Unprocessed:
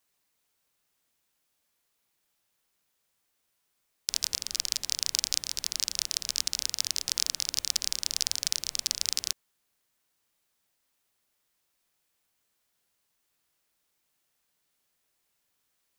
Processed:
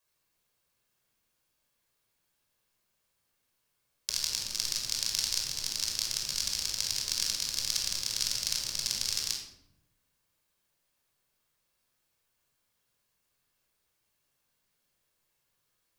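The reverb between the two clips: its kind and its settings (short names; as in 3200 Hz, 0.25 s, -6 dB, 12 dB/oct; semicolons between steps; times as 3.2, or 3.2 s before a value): shoebox room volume 2100 m³, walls furnished, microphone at 5.4 m; gain -5.5 dB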